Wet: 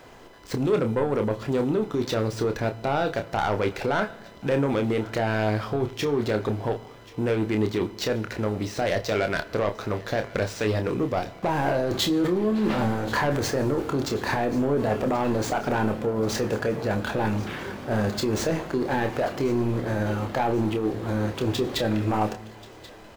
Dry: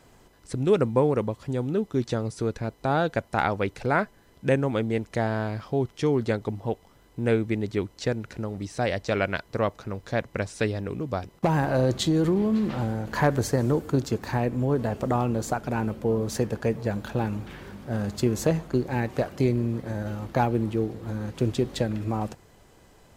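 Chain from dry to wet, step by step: median filter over 5 samples; tone controls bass -8 dB, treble -1 dB; in parallel at +2.5 dB: negative-ratio compressor -30 dBFS, ratio -0.5; on the sum: soft clip -17.5 dBFS, distortion -14 dB; doubler 28 ms -7 dB; thinning echo 1.083 s, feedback 58%, high-pass 1100 Hz, level -18 dB; on a send at -16 dB: reverb RT60 0.95 s, pre-delay 3 ms

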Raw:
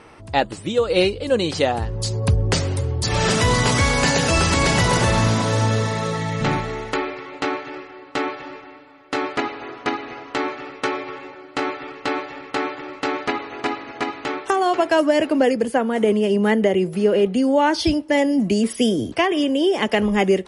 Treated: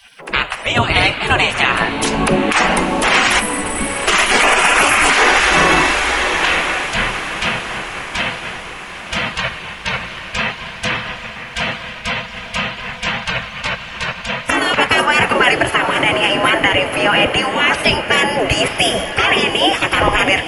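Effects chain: 3.4–4.08 spectral gain 300–7700 Hz -27 dB; 4.42–5.1 resonant high shelf 2700 Hz +11 dB, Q 3; spectral gate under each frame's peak -20 dB weak; band shelf 5900 Hz -13.5 dB; diffused feedback echo 0.882 s, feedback 60%, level -12.5 dB; reverb RT60 0.60 s, pre-delay 5 ms, DRR 17.5 dB; maximiser +23.5 dB; gain -1 dB

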